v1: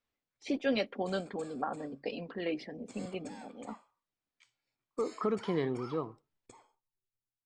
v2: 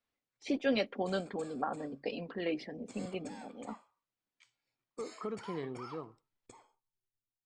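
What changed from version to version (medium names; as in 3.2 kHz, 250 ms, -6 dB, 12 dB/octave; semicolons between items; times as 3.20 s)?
second voice -8.0 dB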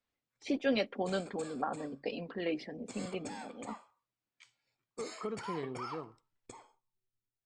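background +5.5 dB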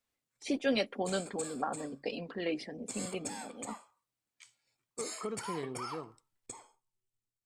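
master: remove distance through air 110 m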